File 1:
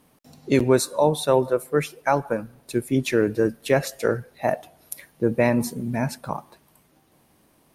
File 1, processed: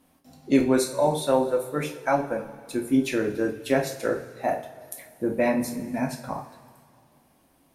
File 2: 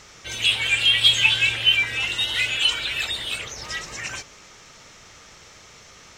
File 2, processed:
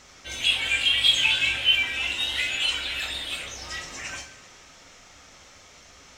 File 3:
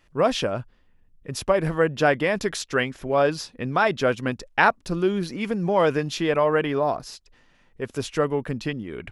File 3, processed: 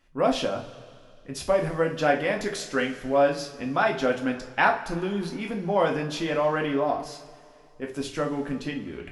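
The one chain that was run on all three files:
coupled-rooms reverb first 0.32 s, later 2.3 s, from −18 dB, DRR 0.5 dB
level −5.5 dB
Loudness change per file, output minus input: −2.5, −3.0, −2.5 LU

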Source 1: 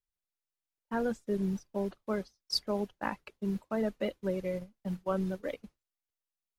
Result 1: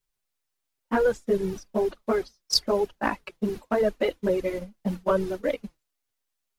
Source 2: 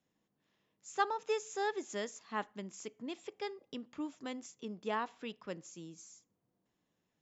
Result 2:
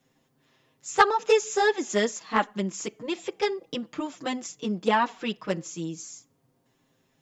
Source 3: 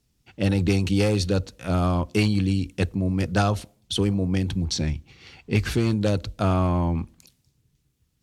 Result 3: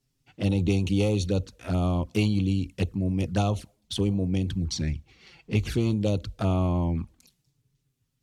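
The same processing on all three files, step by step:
flanger swept by the level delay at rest 7.6 ms, full sweep at −19 dBFS
loudness normalisation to −27 LKFS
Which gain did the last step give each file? +12.0, +16.5, −2.0 decibels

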